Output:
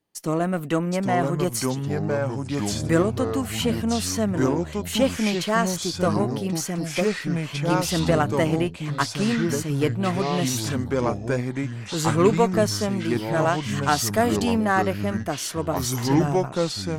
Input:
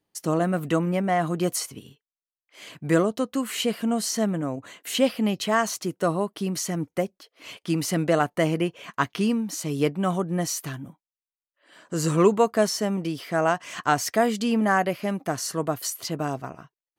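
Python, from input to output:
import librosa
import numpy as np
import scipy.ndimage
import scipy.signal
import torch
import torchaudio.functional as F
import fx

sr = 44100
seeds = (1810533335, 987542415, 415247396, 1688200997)

y = fx.peak_eq(x, sr, hz=12000.0, db=5.0, octaves=1.3, at=(13.59, 14.65))
y = fx.cheby_harmonics(y, sr, harmonics=(8,), levels_db=(-30,), full_scale_db=-6.0)
y = fx.echo_pitch(y, sr, ms=728, semitones=-4, count=3, db_per_echo=-3.0)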